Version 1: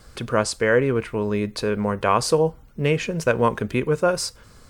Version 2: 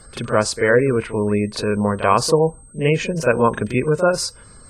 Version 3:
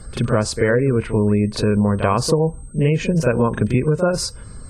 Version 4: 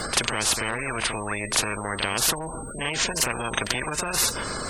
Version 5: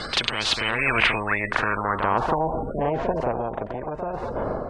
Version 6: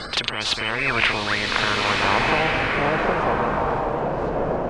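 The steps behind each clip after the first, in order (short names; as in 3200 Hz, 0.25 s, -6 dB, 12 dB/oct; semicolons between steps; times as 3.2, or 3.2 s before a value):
whine 8300 Hz -47 dBFS; spectral gate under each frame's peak -30 dB strong; reverse echo 39 ms -11 dB; gain +3 dB
low shelf 290 Hz +11.5 dB; compressor, threshold -13 dBFS, peak gain reduction 8 dB
spectral compressor 10:1; gain +3.5 dB
AGC; low-pass sweep 3800 Hz -> 700 Hz, 0.53–2.57; gain -2.5 dB
bloom reverb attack 1.48 s, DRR -0.5 dB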